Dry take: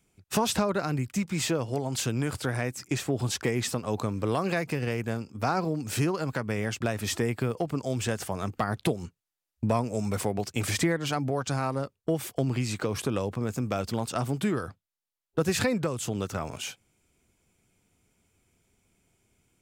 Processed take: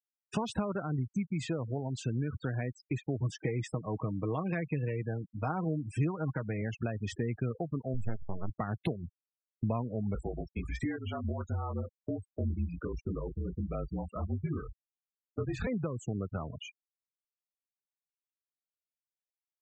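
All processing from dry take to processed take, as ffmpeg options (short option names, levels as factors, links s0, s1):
-filter_complex "[0:a]asettb=1/sr,asplit=3[s0][s1][s2];[s0]atrim=end=3.214[s3];[s1]atrim=start=3.21:end=6.62,asetpts=PTS-STARTPTS,afade=t=in:d=0.004:c=qsin,afade=t=out:st=3.406:d=0.004:c=qsin,aecho=1:1:6.4:0.45,atrim=end_sample=150381,deesser=0.5,asuperstop=centerf=4100:order=4:qfactor=4.9[s4];[s2]atrim=start=6.616[s5];[s3][s4]acrossfade=d=0.004:c1=hsin:c2=qsin[s6];[s6][s5]acrossfade=d=0.004:c1=qsin:c2=hsin,asettb=1/sr,asplit=3[s7][s8][s9];[s7]atrim=end=7.944[s10];[s8]atrim=start=7.94:end=8.5,asetpts=PTS-STARTPTS,afade=t=in:d=0.004:c=qsin,afade=t=out:st=0.556:d=0.004:c=qsin,aeval=exprs='max(val(0),0)':c=same,lowshelf=f=84:g=10.5[s11];[s9]atrim=start=8.496[s12];[s10][s11]acrossfade=d=0.004:c1=hsin:c2=qsin[s13];[s13][s12]acrossfade=d=0.004:c1=qsin:c2=hsin,asettb=1/sr,asplit=3[s14][s15][s16];[s14]atrim=end=10.154[s17];[s15]atrim=start=10.15:end=15.67,asetpts=PTS-STARTPTS,afade=t=in:d=0.004:c=qsin,afade=t=out:st=5.516:d=0.004:c=qsin,afreqshift=-43,flanger=delay=20:depth=3.4:speed=1.4[s18];[s16]atrim=start=15.666[s19];[s17][s18]acrossfade=d=0.004:c1=hsin:c2=qsin[s20];[s20][s19]acrossfade=d=0.004:c1=qsin:c2=hsin,afftfilt=real='re*gte(hypot(re,im),0.0398)':imag='im*gte(hypot(re,im),0.0398)':win_size=1024:overlap=0.75,acompressor=threshold=0.0141:ratio=1.5,bass=f=250:g=5,treble=f=4000:g=-8,volume=0.708"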